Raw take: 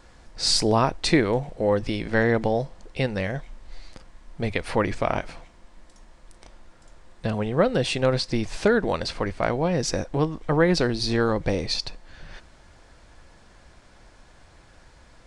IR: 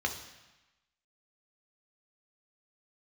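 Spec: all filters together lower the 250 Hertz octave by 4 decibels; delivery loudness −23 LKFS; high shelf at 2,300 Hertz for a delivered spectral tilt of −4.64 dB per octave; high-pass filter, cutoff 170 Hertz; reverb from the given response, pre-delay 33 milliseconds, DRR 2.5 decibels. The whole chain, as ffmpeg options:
-filter_complex "[0:a]highpass=170,equalizer=frequency=250:width_type=o:gain=-4,highshelf=frequency=2300:gain=-4,asplit=2[link_01][link_02];[1:a]atrim=start_sample=2205,adelay=33[link_03];[link_02][link_03]afir=irnorm=-1:irlink=0,volume=-9dB[link_04];[link_01][link_04]amix=inputs=2:normalize=0,volume=2dB"

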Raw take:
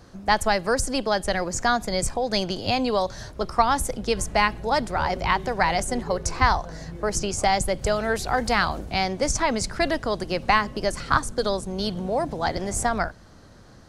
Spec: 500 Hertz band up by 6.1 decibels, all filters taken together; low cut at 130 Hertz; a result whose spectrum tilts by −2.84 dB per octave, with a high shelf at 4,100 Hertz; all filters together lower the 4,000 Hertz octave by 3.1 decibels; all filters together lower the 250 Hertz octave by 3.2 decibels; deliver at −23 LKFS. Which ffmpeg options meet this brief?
ffmpeg -i in.wav -af "highpass=130,equalizer=frequency=250:width_type=o:gain=-6.5,equalizer=frequency=500:width_type=o:gain=9,equalizer=frequency=4000:width_type=o:gain=-7.5,highshelf=frequency=4100:gain=5.5,volume=-1.5dB" out.wav

